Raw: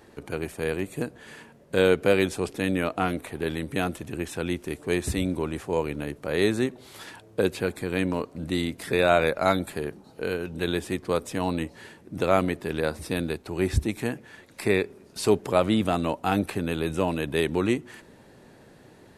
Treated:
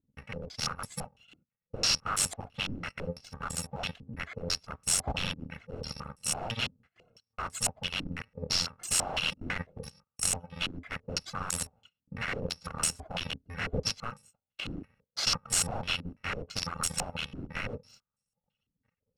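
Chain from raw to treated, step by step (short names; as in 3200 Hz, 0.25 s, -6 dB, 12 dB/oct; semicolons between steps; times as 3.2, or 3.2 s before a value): FFT order left unsorted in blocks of 128 samples; reverb removal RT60 1.5 s; gate -50 dBFS, range -24 dB; wrapped overs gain 22.5 dB; stepped low-pass 6 Hz 300–8000 Hz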